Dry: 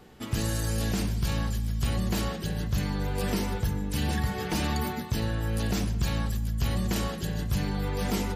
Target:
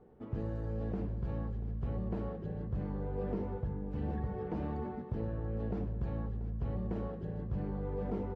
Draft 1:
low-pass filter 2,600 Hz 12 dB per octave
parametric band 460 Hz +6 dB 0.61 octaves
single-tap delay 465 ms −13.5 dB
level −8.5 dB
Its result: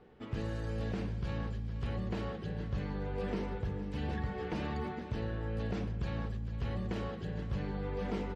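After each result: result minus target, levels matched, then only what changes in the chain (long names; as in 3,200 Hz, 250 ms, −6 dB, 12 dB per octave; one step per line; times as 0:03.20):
2,000 Hz band +10.5 dB; echo 220 ms early
change: low-pass filter 900 Hz 12 dB per octave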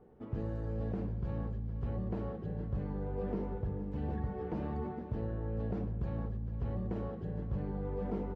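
echo 220 ms early
change: single-tap delay 685 ms −13.5 dB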